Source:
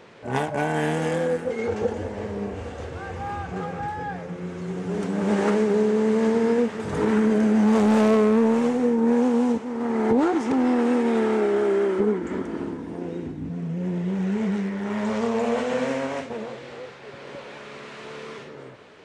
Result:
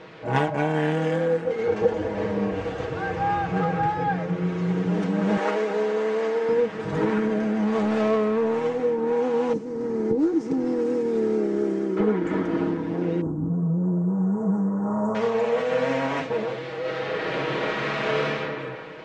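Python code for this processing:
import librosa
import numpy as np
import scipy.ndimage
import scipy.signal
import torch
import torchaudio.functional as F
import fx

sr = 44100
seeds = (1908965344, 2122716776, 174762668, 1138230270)

y = fx.highpass(x, sr, hz=400.0, slope=12, at=(5.37, 6.49))
y = fx.band_shelf(y, sr, hz=1500.0, db=-13.5, octaves=3.0, at=(9.53, 11.97))
y = fx.cheby1_bandstop(y, sr, low_hz=1200.0, high_hz=7200.0, order=3, at=(13.21, 15.15))
y = fx.reverb_throw(y, sr, start_s=16.79, length_s=1.45, rt60_s=2.6, drr_db=-7.5)
y = scipy.signal.sosfilt(scipy.signal.butter(2, 4600.0, 'lowpass', fs=sr, output='sos'), y)
y = y + 0.71 * np.pad(y, (int(6.3 * sr / 1000.0), 0))[:len(y)]
y = fx.rider(y, sr, range_db=4, speed_s=0.5)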